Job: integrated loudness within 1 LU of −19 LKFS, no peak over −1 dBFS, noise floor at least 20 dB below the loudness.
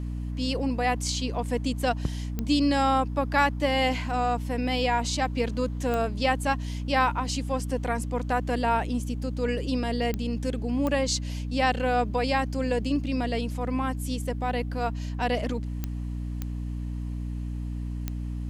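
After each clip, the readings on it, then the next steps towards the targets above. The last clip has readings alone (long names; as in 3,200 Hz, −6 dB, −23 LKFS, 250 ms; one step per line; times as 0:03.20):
number of clicks 7; mains hum 60 Hz; hum harmonics up to 300 Hz; level of the hum −29 dBFS; integrated loudness −27.5 LKFS; sample peak −9.5 dBFS; target loudness −19.0 LKFS
→ click removal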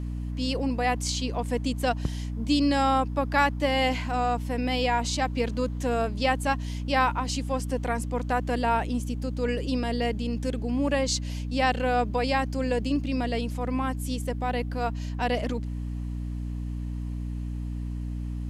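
number of clicks 0; mains hum 60 Hz; hum harmonics up to 300 Hz; level of the hum −29 dBFS
→ hum removal 60 Hz, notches 5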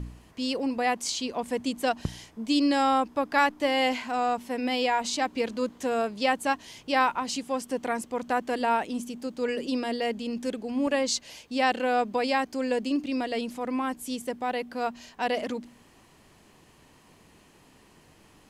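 mains hum none found; integrated loudness −28.0 LKFS; sample peak −10.5 dBFS; target loudness −19.0 LKFS
→ level +9 dB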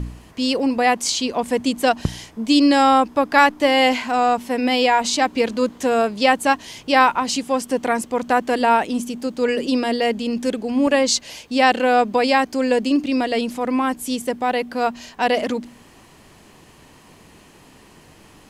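integrated loudness −19.0 LKFS; sample peak −1.5 dBFS; background noise floor −49 dBFS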